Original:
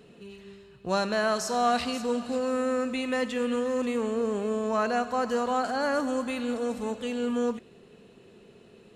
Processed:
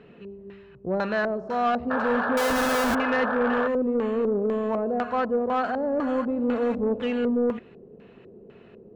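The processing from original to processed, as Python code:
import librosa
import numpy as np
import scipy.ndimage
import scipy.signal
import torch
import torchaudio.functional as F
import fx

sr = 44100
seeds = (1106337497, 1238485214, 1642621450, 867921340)

y = fx.rider(x, sr, range_db=10, speed_s=0.5)
y = fx.filter_lfo_lowpass(y, sr, shape='square', hz=2.0, low_hz=480.0, high_hz=2100.0, q=1.3)
y = fx.schmitt(y, sr, flips_db=-39.0, at=(2.37, 2.95))
y = fx.spec_paint(y, sr, seeds[0], shape='noise', start_s=1.9, length_s=1.78, low_hz=420.0, high_hz=1800.0, level_db=-30.0)
y = 10.0 ** (-19.0 / 20.0) * np.tanh(y / 10.0 ** (-19.0 / 20.0))
y = F.gain(torch.from_numpy(y), 3.5).numpy()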